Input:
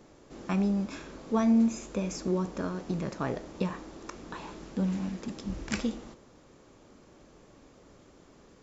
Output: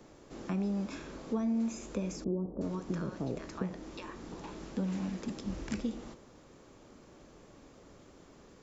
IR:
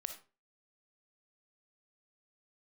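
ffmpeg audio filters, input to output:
-filter_complex "[0:a]asettb=1/sr,asplit=3[a][b][c];[a]atrim=end=2.244[d];[b]atrim=start=2.24:end=4.44,asetpts=PTS-STARTPTS,afade=t=in:d=0.004:c=qsin,afade=t=out:st=2.196:d=0.004:c=qsin,acrossover=split=740[e][f];[f]adelay=370[g];[e][g]amix=inputs=2:normalize=0,atrim=end_sample=97020[h];[c]atrim=start=4.436[i];[d][h]acrossfade=d=0.004:c1=hsin:c2=qsin[j];[j][i]acrossfade=d=0.004:c1=qsin:c2=hsin,acrossover=split=240|480[k][l][m];[k]acompressor=threshold=-37dB:ratio=4[n];[l]acompressor=threshold=-36dB:ratio=4[o];[m]acompressor=threshold=-45dB:ratio=4[p];[n][o][p]amix=inputs=3:normalize=0"

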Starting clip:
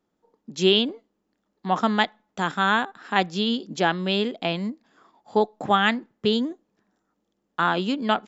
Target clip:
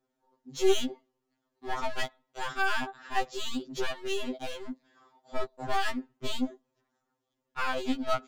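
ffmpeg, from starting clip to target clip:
-af "acontrast=75,aeval=exprs='clip(val(0),-1,0.075)':c=same,afftfilt=real='re*2.45*eq(mod(b,6),0)':imag='im*2.45*eq(mod(b,6),0)':win_size=2048:overlap=0.75,volume=-8.5dB"

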